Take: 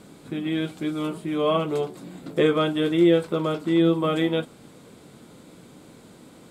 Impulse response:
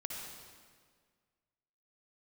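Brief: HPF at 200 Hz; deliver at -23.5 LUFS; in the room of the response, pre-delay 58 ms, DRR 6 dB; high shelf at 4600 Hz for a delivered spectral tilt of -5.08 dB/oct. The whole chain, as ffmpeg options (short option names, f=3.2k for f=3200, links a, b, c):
-filter_complex "[0:a]highpass=200,highshelf=f=4.6k:g=-8.5,asplit=2[a][b];[1:a]atrim=start_sample=2205,adelay=58[c];[b][c]afir=irnorm=-1:irlink=0,volume=-6dB[d];[a][d]amix=inputs=2:normalize=0"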